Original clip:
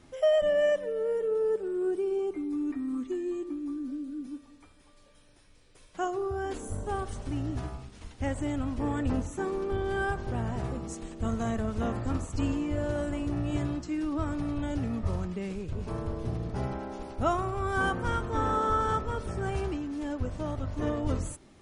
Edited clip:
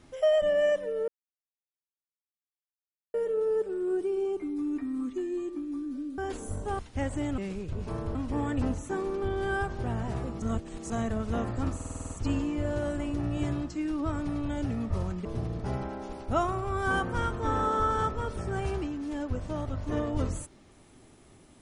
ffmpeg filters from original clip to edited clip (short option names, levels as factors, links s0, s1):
-filter_complex "[0:a]asplit=16[s0][s1][s2][s3][s4][s5][s6][s7][s8][s9][s10][s11][s12][s13][s14][s15];[s0]atrim=end=1.08,asetpts=PTS-STARTPTS,afade=t=out:st=1.076:d=0.004:c=hsin,apad=pad_dur=2.06[s16];[s1]atrim=start=1.08:end=4.122,asetpts=PTS-STARTPTS,afade=t=in:d=0.004:c=hsin[s17];[s2]atrim=start=6.388:end=7.002[s18];[s3]atrim=start=8.038:end=8.632[s19];[s4]atrim=start=15.378:end=16.152[s20];[s5]atrim=start=8.628:end=10.902[s21];[s6]atrim=start=10.898:end=11.382,asetpts=PTS-STARTPTS,areverse[s22];[s7]atrim=start=11.378:end=12.282[s23];[s8]atrim=start=12.228:end=12.282[s24];[s9]atrim=start=12.228:end=12.282[s25];[s10]atrim=start=12.228:end=12.282[s26];[s11]atrim=start=12.228:end=12.282[s27];[s12]atrim=start=12.228:end=12.282[s28];[s13]atrim=start=12.228:end=12.282[s29];[s14]atrim=start=12.228:end=15.382[s30];[s15]atrim=start=16.148[s31];[s16][s17]concat=n=2:v=0:a=1[s32];[s32][s18]acrossfade=d=0.004:c1=hsin:c2=hsin[s33];[s33][s19]acrossfade=d=0.004:c1=hsin:c2=hsin[s34];[s34][s20]acrossfade=d=0.004:c1=hsin:c2=hsin[s35];[s35][s21]acrossfade=d=0.004:c1=hsin:c2=hsin[s36];[s36][s22]acrossfade=d=0.004:c1=hsin:c2=hsin[s37];[s37][s23]acrossfade=d=0.004:c1=hsin:c2=hsin[s38];[s38][s24]acrossfade=d=0.004:c1=hsin:c2=hsin[s39];[s39][s25]acrossfade=d=0.004:c1=hsin:c2=hsin[s40];[s40][s26]acrossfade=d=0.004:c1=hsin:c2=hsin[s41];[s41][s27]acrossfade=d=0.004:c1=hsin:c2=hsin[s42];[s42][s28]acrossfade=d=0.004:c1=hsin:c2=hsin[s43];[s43][s29]acrossfade=d=0.004:c1=hsin:c2=hsin[s44];[s44][s30]acrossfade=d=0.004:c1=hsin:c2=hsin[s45];[s45][s31]acrossfade=d=0.004:c1=hsin:c2=hsin"